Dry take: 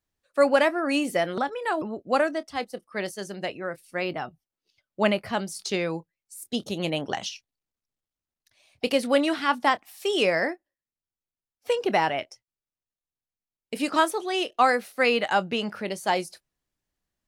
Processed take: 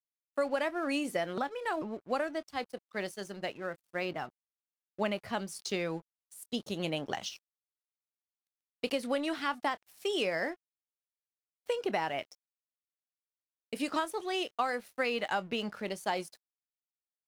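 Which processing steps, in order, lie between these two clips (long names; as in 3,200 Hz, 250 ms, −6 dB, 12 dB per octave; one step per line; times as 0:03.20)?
downward compressor, threshold −22 dBFS, peak gain reduction 8 dB
dead-zone distortion −49.5 dBFS
level −5 dB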